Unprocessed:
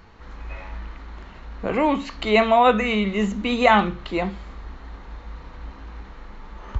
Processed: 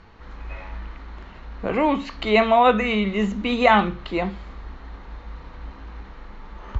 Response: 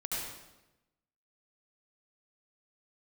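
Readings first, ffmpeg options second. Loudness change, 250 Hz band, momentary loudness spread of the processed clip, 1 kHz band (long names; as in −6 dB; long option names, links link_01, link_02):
0.0 dB, 0.0 dB, 23 LU, 0.0 dB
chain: -af "lowpass=5900"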